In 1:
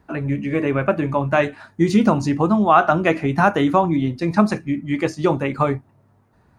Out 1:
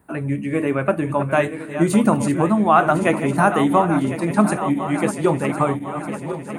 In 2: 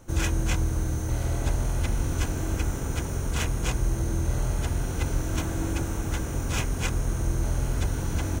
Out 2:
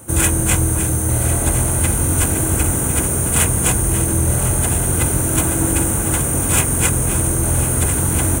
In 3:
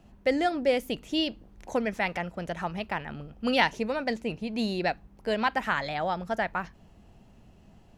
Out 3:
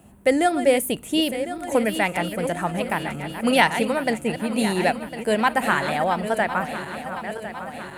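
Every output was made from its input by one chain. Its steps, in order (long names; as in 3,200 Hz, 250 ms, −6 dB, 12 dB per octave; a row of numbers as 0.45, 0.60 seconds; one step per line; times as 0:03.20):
feedback delay that plays each chunk backwards 527 ms, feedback 75%, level −10.5 dB
high-pass filter 75 Hz 12 dB per octave
high shelf with overshoot 7,100 Hz +10 dB, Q 3
normalise the peak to −2 dBFS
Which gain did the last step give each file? −0.5, +10.5, +6.5 decibels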